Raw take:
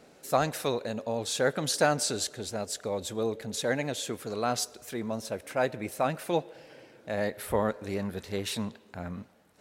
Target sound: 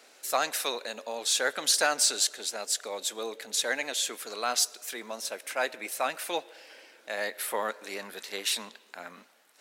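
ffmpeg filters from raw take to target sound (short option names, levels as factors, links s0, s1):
-af "highpass=f=240:w=0.5412,highpass=f=240:w=1.3066,tiltshelf=f=730:g=-9.5,acontrast=77,volume=0.355"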